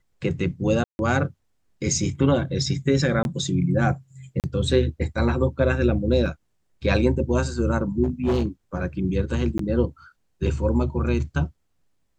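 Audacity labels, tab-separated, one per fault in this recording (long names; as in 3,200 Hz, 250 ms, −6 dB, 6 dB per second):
0.840000	0.990000	drop-out 151 ms
3.230000	3.250000	drop-out 21 ms
4.400000	4.440000	drop-out 38 ms
6.260000	6.260000	drop-out 2 ms
8.030000	8.460000	clipping −17.5 dBFS
9.580000	9.590000	drop-out 13 ms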